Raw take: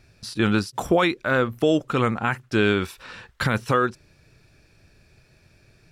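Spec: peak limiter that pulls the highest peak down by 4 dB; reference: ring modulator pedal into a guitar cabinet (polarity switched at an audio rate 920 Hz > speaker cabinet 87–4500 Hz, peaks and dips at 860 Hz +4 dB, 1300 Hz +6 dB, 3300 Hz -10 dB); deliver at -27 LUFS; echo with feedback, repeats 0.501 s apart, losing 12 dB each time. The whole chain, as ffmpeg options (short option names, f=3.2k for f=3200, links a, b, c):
-af "alimiter=limit=-13.5dB:level=0:latency=1,aecho=1:1:501|1002|1503:0.251|0.0628|0.0157,aeval=exprs='val(0)*sgn(sin(2*PI*920*n/s))':c=same,highpass=87,equalizer=f=860:t=q:w=4:g=4,equalizer=f=1.3k:t=q:w=4:g=6,equalizer=f=3.3k:t=q:w=4:g=-10,lowpass=f=4.5k:w=0.5412,lowpass=f=4.5k:w=1.3066,volume=-3.5dB"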